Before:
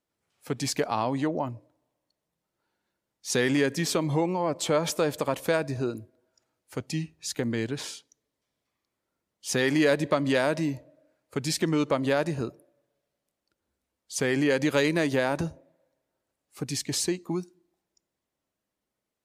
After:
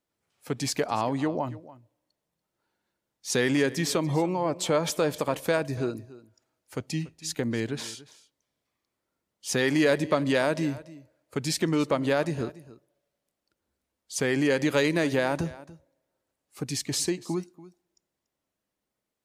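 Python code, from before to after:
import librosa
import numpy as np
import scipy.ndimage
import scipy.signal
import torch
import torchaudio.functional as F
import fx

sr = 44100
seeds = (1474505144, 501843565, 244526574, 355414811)

y = x + 10.0 ** (-18.5 / 20.0) * np.pad(x, (int(287 * sr / 1000.0), 0))[:len(x)]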